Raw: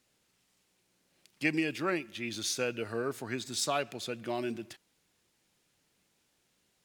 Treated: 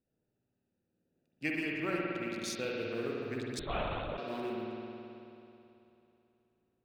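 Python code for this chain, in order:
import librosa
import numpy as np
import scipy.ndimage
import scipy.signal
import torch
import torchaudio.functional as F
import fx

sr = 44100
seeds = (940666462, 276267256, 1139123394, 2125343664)

y = fx.wiener(x, sr, points=41)
y = fx.mod_noise(y, sr, seeds[0], snr_db=35)
y = fx.rev_spring(y, sr, rt60_s=3.0, pass_ms=(54,), chirp_ms=25, drr_db=-3.0)
y = fx.lpc_vocoder(y, sr, seeds[1], excitation='whisper', order=10, at=(3.59, 4.18))
y = y * librosa.db_to_amplitude(-5.5)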